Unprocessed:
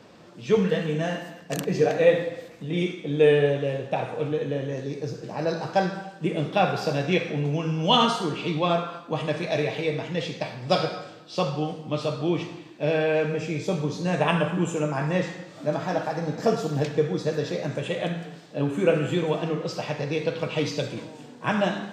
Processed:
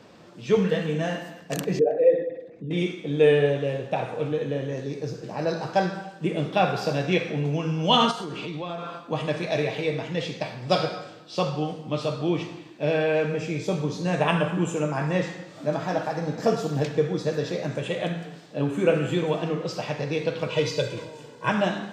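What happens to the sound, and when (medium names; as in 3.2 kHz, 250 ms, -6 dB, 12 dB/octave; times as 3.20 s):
1.79–2.71 s: resonances exaggerated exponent 2
8.11–9.00 s: compression, threshold -29 dBFS
20.48–21.50 s: comb 2 ms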